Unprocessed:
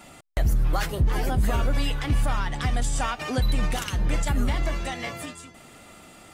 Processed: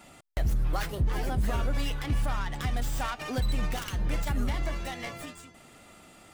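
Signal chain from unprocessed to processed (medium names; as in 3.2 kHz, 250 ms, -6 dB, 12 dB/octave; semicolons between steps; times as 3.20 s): tracing distortion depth 0.14 ms; trim -5 dB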